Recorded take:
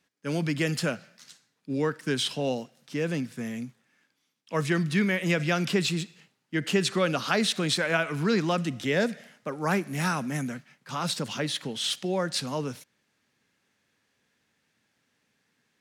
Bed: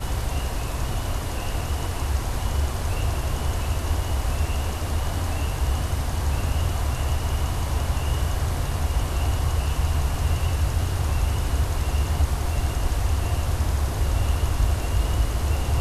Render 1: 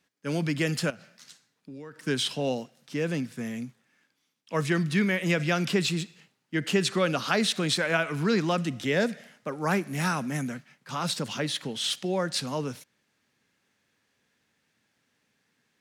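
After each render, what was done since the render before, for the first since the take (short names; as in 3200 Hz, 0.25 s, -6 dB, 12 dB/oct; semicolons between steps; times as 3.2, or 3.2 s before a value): 0.9–2.06 compressor, threshold -40 dBFS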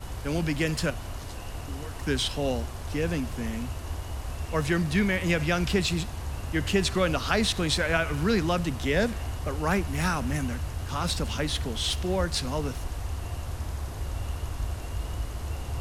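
add bed -10 dB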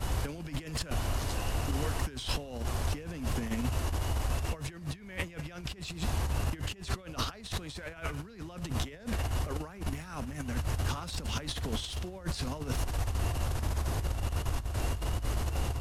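negative-ratio compressor -33 dBFS, ratio -0.5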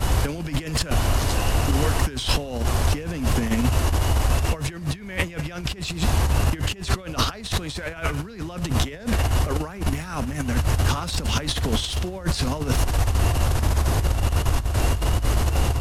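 gain +11 dB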